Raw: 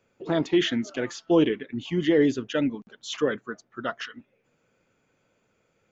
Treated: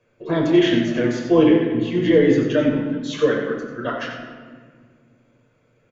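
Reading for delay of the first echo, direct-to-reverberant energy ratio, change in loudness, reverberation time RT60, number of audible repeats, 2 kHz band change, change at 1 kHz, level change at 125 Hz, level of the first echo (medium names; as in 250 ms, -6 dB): 93 ms, -2.0 dB, +7.0 dB, 1.8 s, 1, +5.5 dB, +5.5 dB, +8.5 dB, -8.5 dB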